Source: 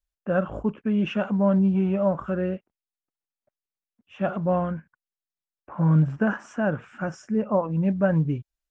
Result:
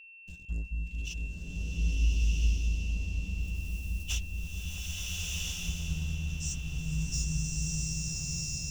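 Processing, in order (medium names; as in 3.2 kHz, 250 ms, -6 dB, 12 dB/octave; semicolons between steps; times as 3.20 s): recorder AGC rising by 23 dB/s; inverse Chebyshev band-stop 250–1400 Hz, stop band 70 dB; peaking EQ 570 Hz -8 dB 1.4 oct; waveshaping leveller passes 3; transient shaper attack +5 dB, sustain -11 dB; whistle 2.7 kHz -49 dBFS; delay with an opening low-pass 219 ms, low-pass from 200 Hz, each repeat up 1 oct, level 0 dB; swelling reverb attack 1370 ms, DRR -6.5 dB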